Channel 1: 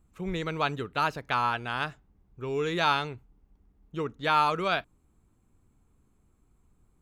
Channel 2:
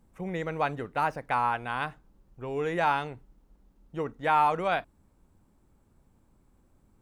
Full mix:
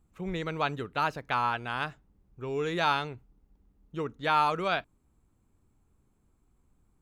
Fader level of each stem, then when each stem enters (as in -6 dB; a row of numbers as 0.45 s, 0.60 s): -3.5 dB, -13.5 dB; 0.00 s, 0.00 s